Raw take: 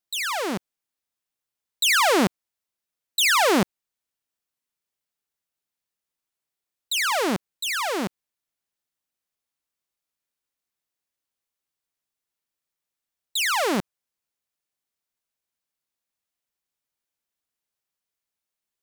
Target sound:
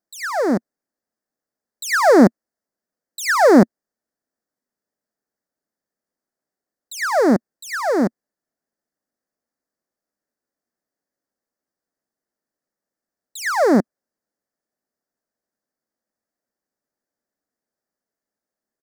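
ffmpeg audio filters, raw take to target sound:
-af "firequalizer=gain_entry='entry(110,0);entry(230,13);entry(370,9);entry(610,11);entry(970,1);entry(1800,5);entry(2800,-25);entry(4700,-1);entry(9900,-6)':delay=0.05:min_phase=1"

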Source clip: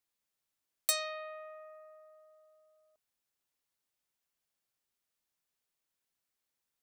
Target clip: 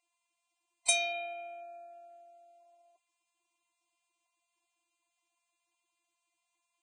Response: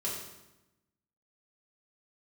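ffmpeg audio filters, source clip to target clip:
-af "superequalizer=9b=3.98:10b=0.398:11b=0.282:12b=2.51:14b=0.562,afftfilt=real='hypot(re,im)*cos(PI*b)':imag='0':win_size=512:overlap=0.75,volume=8dB" -ar 22050 -c:a libvorbis -b:a 16k

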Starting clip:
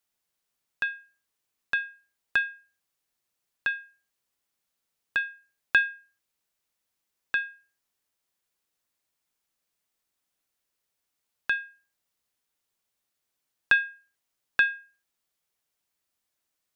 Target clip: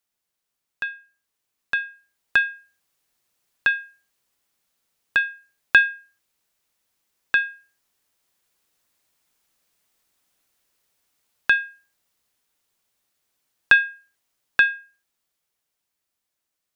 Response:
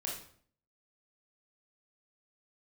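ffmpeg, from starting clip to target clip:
-af "dynaudnorm=f=270:g=17:m=11.5dB"

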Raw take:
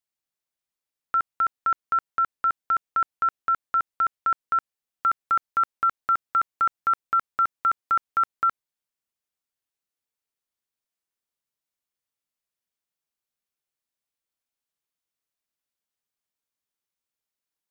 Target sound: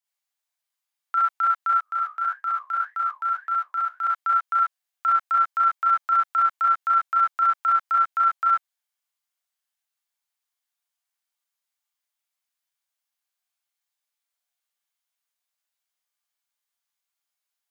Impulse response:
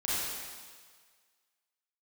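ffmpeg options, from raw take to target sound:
-filter_complex "[0:a]highpass=f=650:w=0.5412,highpass=f=650:w=1.3066,asplit=3[a][b][c];[a]afade=t=out:st=1.81:d=0.02[d];[b]flanger=delay=9.5:depth=6.9:regen=-69:speed=1.7:shape=sinusoidal,afade=t=in:st=1.81:d=0.02,afade=t=out:st=4.04:d=0.02[e];[c]afade=t=in:st=4.04:d=0.02[f];[d][e][f]amix=inputs=3:normalize=0[g];[1:a]atrim=start_sample=2205,atrim=end_sample=3528[h];[g][h]afir=irnorm=-1:irlink=0"

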